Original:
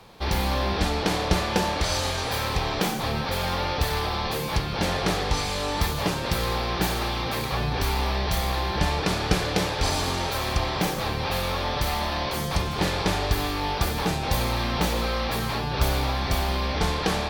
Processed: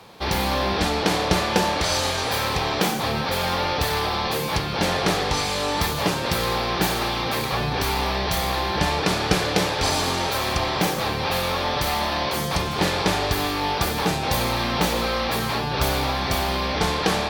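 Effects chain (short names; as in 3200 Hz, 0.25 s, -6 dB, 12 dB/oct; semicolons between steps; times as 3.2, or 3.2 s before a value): HPF 130 Hz 6 dB/oct; gain +4 dB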